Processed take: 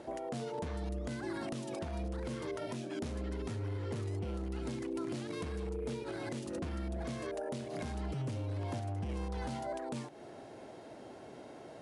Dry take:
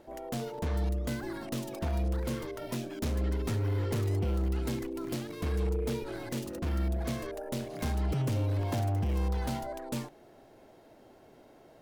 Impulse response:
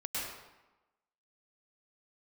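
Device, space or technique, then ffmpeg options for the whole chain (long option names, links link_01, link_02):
podcast mastering chain: -af "highpass=82,deesser=0.85,acompressor=threshold=-43dB:ratio=2.5,alimiter=level_in=12dB:limit=-24dB:level=0:latency=1:release=281,volume=-12dB,volume=7dB" -ar 24000 -c:a libmp3lame -b:a 96k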